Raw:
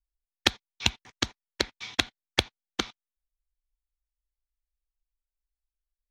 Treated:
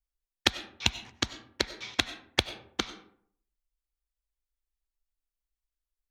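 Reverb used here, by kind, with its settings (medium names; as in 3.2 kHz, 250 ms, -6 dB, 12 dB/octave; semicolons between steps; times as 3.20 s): algorithmic reverb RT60 0.62 s, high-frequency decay 0.5×, pre-delay 55 ms, DRR 13 dB; trim -1.5 dB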